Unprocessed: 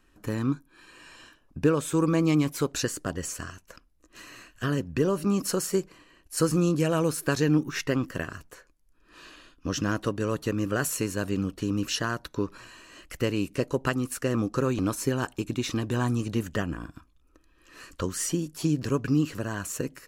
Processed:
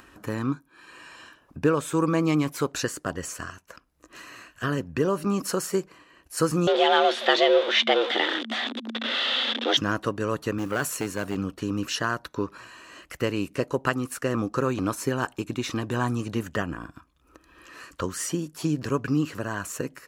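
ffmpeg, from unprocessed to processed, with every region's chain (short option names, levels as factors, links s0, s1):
-filter_complex "[0:a]asettb=1/sr,asplit=3[s0][s1][s2];[s0]atrim=end=6.674[s3];[s1]atrim=start=6.67:end=9.77,asetpts=PTS-STARTPTS,afade=t=in:d=0.004:c=qsin,afade=t=out:st=3.096:d=0.004:c=qsin,aeval=exprs='val(0)+0.5*0.0376*sgn(val(0))':c=same,lowpass=f=3300:t=q:w=8.6,afreqshift=220[s4];[s2]atrim=start=9.766[s5];[s3][s4]acrossfade=d=0.004:c1=hsin:c2=qsin[s6];[s6][s5]acrossfade=d=0.004:c1=qsin:c2=hsin,asettb=1/sr,asplit=3[s7][s8][s9];[s7]atrim=end=10.584[s10];[s8]atrim=start=10.58:end=11.35,asetpts=PTS-STARTPTS,afade=t=in:d=0.004:c=qsin,afade=t=out:st=0.766:d=0.004:c=qsin,highpass=81,aeval=exprs='clip(val(0),-1,0.0841)':c=same,acrusher=bits=6:mode=log:mix=0:aa=0.000001[s11];[s9]atrim=start=11.346[s12];[s10][s11]acrossfade=d=0.004:c1=hsin:c2=qsin[s13];[s13][s12]acrossfade=d=0.004:c1=qsin:c2=hsin,highpass=62,equalizer=f=1100:t=o:w=2.3:g=6,acompressor=mode=upward:threshold=0.01:ratio=2.5,volume=0.841"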